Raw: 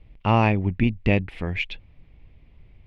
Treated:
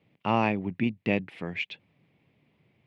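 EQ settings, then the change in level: high-pass 140 Hz 24 dB/octave; -4.5 dB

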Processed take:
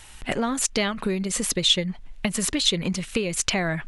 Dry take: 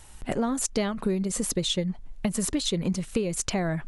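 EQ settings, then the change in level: peaking EQ 2.6 kHz +10.5 dB 2.2 oct; treble shelf 9.9 kHz +3.5 dB; 0.0 dB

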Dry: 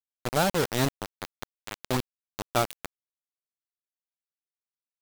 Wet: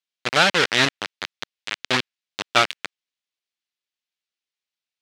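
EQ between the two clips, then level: frequency weighting D; dynamic bell 1.6 kHz, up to +7 dB, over -39 dBFS, Q 0.95; distance through air 62 m; +2.5 dB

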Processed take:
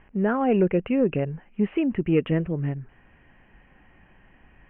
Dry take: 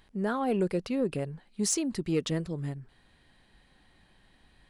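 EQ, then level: steep low-pass 2.9 kHz 96 dB/octave; dynamic bell 1.1 kHz, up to -4 dB, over -50 dBFS, Q 1.6; +7.5 dB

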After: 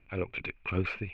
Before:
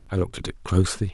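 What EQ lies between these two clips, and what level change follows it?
bass shelf 110 Hz -4.5 dB; dynamic bell 600 Hz, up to +5 dB, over -37 dBFS, Q 1.5; four-pole ladder low-pass 2.5 kHz, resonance 90%; +3.0 dB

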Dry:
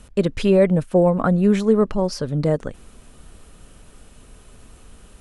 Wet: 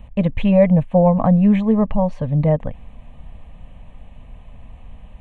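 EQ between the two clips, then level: tape spacing loss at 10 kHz 31 dB; static phaser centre 1.4 kHz, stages 6; +8.0 dB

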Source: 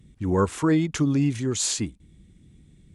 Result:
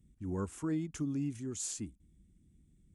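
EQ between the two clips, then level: graphic EQ 125/500/1000/2000/4000 Hz -6/-8/-7/-7/-11 dB; -9.0 dB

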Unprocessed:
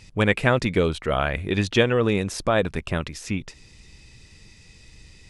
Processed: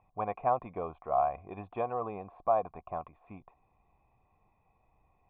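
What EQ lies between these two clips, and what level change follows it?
cascade formant filter a; +5.5 dB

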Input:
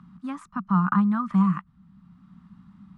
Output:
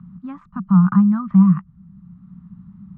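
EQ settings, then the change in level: low-pass 1.7 kHz 6 dB/octave; distance through air 140 m; resonant low shelf 230 Hz +9 dB, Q 1.5; 0.0 dB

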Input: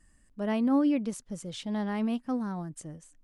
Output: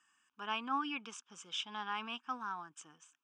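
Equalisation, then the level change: high-pass 1.1 kHz 12 dB/octave; low-pass 3.9 kHz 12 dB/octave; static phaser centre 2.9 kHz, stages 8; +8.0 dB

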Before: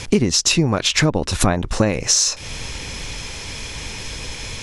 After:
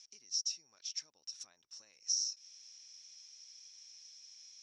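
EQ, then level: band-pass filter 5.6 kHz, Q 15; distance through air 52 m; -8.5 dB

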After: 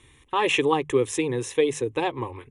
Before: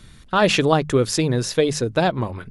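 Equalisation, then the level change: high-pass 140 Hz 6 dB/octave; elliptic low-pass 10 kHz, stop band 40 dB; static phaser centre 960 Hz, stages 8; 0.0 dB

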